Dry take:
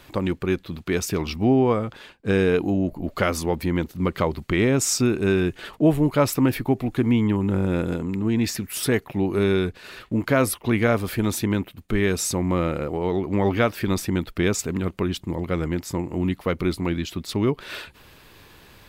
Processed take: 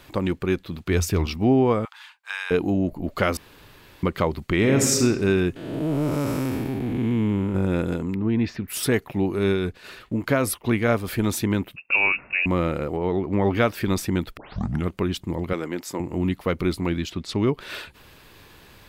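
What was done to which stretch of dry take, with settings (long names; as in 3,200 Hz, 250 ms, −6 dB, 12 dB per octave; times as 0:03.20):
0:00.86–0:01.26: parametric band 84 Hz +12 dB 0.57 octaves
0:01.85–0:02.51: elliptic high-pass filter 890 Hz, stop band 60 dB
0:03.37–0:04.03: fill with room tone
0:04.57–0:05.01: thrown reverb, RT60 1.3 s, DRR 3 dB
0:05.56–0:07.55: spectrum smeared in time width 392 ms
0:08.14–0:08.68: high-frequency loss of the air 270 metres
0:09.28–0:11.10: amplitude tremolo 4.9 Hz, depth 34%
0:11.76–0:12.46: voice inversion scrambler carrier 2,700 Hz
0:12.96–0:13.55: high-shelf EQ 4,600 Hz −11.5 dB
0:14.37: tape start 0.50 s
0:15.53–0:16.00: high-pass filter 280 Hz
0:17.09–0:17.51: low-pass filter 5,500 Hz → 11,000 Hz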